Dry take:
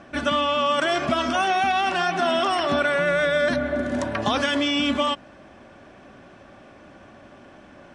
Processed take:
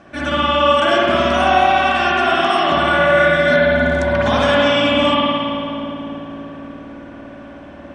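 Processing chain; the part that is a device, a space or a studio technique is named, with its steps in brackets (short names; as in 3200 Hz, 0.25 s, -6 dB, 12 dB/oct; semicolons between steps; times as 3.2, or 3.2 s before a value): dub delay into a spring reverb (darkening echo 0.288 s, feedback 76%, low-pass 1100 Hz, level -8 dB; spring tank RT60 2.5 s, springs 54 ms, chirp 45 ms, DRR -7 dB)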